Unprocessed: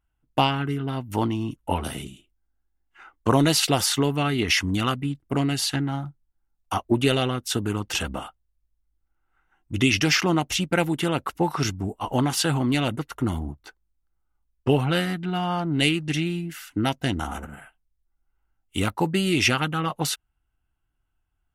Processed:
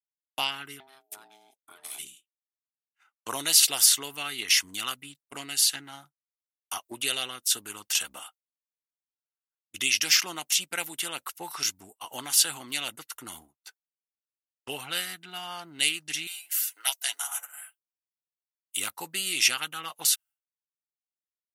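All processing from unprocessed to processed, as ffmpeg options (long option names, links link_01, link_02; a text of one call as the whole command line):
ffmpeg -i in.wav -filter_complex "[0:a]asettb=1/sr,asplit=3[link_01][link_02][link_03];[link_01]atrim=end=0.804[link_04];[link_02]atrim=start=0.8:end=1.99,asetpts=PTS-STARTPTS,afade=type=in:duration=0.004:curve=qsin,afade=type=out:start_time=1.186:duration=0.004:curve=qsin,acompressor=threshold=-31dB:ratio=6:attack=3.2:release=140:knee=1:detection=peak,aeval=exprs='val(0)*sin(2*PI*530*n/s)':channel_layout=same[link_05];[link_03]atrim=start=1.986[link_06];[link_04][link_05]acrossfade=duration=0.004:curve1=hsin:curve2=qsin[link_07];[link_07][link_06]acrossfade=duration=0.004:curve1=qsin:curve2=hsin,asettb=1/sr,asplit=3[link_08][link_09][link_10];[link_08]atrim=end=16.274[link_11];[link_09]atrim=start=16.27:end=18.77,asetpts=PTS-STARTPTS,afade=type=in:duration=0.004:curve=qsin,afade=type=out:start_time=2.496:duration=0.004:curve=qsin,highpass=frequency=670:width=0.5412,highpass=frequency=670:width=1.3066,highshelf=frequency=7500:gain=10.5,aecho=1:1:7.1:0.6,atrim=end_sample=110250[link_12];[link_10]atrim=start=18.766[link_13];[link_11][link_12]acrossfade=duration=0.004:curve1=hsin:curve2=qsin[link_14];[link_14][link_13]acrossfade=duration=0.004:curve1=qsin:curve2=hsin,aderivative,agate=range=-33dB:threshold=-51dB:ratio=3:detection=peak,volume=6dB" out.wav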